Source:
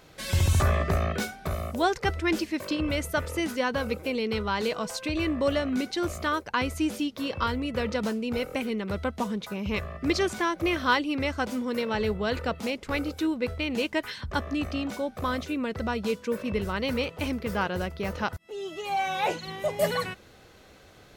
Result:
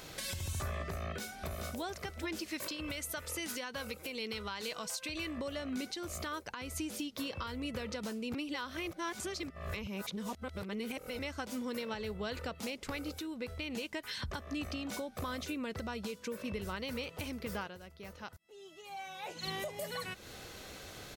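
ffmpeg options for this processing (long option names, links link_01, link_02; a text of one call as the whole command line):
ffmpeg -i in.wav -filter_complex "[0:a]asplit=2[link_01][link_02];[link_02]afade=type=in:start_time=1:duration=0.01,afade=type=out:start_time=1.83:duration=0.01,aecho=0:1:430|860|1290|1720:0.354813|0.124185|0.0434646|0.0152126[link_03];[link_01][link_03]amix=inputs=2:normalize=0,asettb=1/sr,asplit=3[link_04][link_05][link_06];[link_04]atrim=end=2.484[link_07];[link_05]atrim=start=2.48:end=5.38,asetpts=PTS-STARTPTS,afade=type=in:duration=0.004:curve=qsin,afade=type=out:start_time=2.896:duration=0.004:curve=qsin,tiltshelf=frequency=970:gain=-3.5[link_08];[link_06]atrim=start=5.376[link_09];[link_07][link_08]acrossfade=duration=0.004:curve1=hsin:curve2=qsin[link_10];[link_10][link_09]acrossfade=duration=0.004:curve1=qsin:curve2=hsin,asplit=5[link_11][link_12][link_13][link_14][link_15];[link_11]atrim=end=8.342[link_16];[link_12]atrim=start=8.338:end=11.192,asetpts=PTS-STARTPTS,areverse[link_17];[link_13]atrim=start=11.188:end=17.78,asetpts=PTS-STARTPTS,afade=type=out:start_time=6.372:duration=0.22:silence=0.0891251[link_18];[link_14]atrim=start=17.78:end=19.35,asetpts=PTS-STARTPTS,volume=-21dB[link_19];[link_15]atrim=start=19.35,asetpts=PTS-STARTPTS,afade=type=in:duration=0.22:silence=0.0891251[link_20];[link_16][link_17]acrossfade=duration=0.004:curve1=hsin:curve2=hsin[link_21];[link_18][link_19][link_20]concat=n=3:v=0:a=1[link_22];[link_21][link_22]acrossfade=duration=0.004:curve1=hsin:curve2=hsin,acompressor=threshold=-40dB:ratio=5,highshelf=frequency=3200:gain=8.5,alimiter=level_in=7.5dB:limit=-24dB:level=0:latency=1:release=207,volume=-7.5dB,volume=3dB" out.wav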